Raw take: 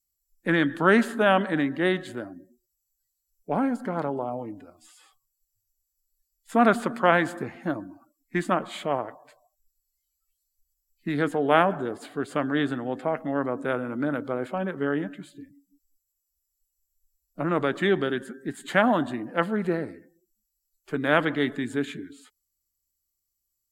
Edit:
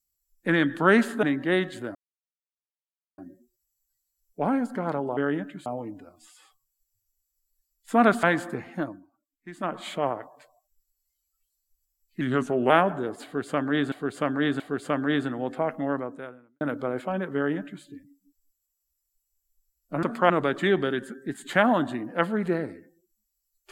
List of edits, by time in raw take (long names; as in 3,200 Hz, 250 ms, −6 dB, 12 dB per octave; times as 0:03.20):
0:01.23–0:01.56: remove
0:02.28: splice in silence 1.23 s
0:06.84–0:07.11: move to 0:17.49
0:07.63–0:08.73: duck −15.5 dB, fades 0.33 s
0:11.09–0:11.52: play speed 88%
0:12.06–0:12.74: repeat, 3 plays
0:13.34–0:14.07: fade out quadratic
0:14.81–0:15.30: duplicate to 0:04.27